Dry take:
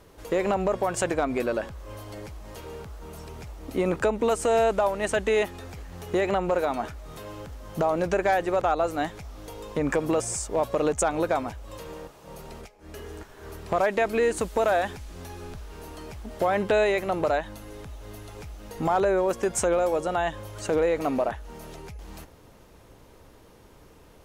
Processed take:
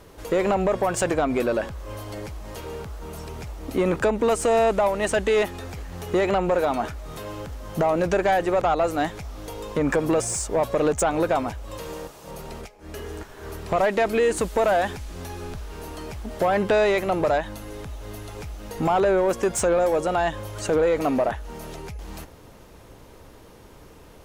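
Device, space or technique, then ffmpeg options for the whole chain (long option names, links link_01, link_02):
saturation between pre-emphasis and de-emphasis: -filter_complex "[0:a]asettb=1/sr,asplit=3[link_01][link_02][link_03];[link_01]atrim=end=11.834[link_04];[link_02]atrim=start=11.83:end=12.31,asetpts=PTS-STARTPTS,afade=type=in:duration=0.004:curve=qsin,afade=type=out:start_time=0.476:duration=0.004:curve=qsin,bass=frequency=250:gain=-1,treble=frequency=4000:gain=5[link_05];[link_03]atrim=start=12.306[link_06];[link_04][link_05]acrossfade=duration=0.004:curve1=hsin:curve2=qsin[link_07];[link_07][link_06]acrossfade=duration=0.004:curve1=qsin:curve2=hsin,highshelf=frequency=4200:gain=8.5,asoftclip=type=tanh:threshold=-18.5dB,highshelf=frequency=4200:gain=-8.5,volume=5dB"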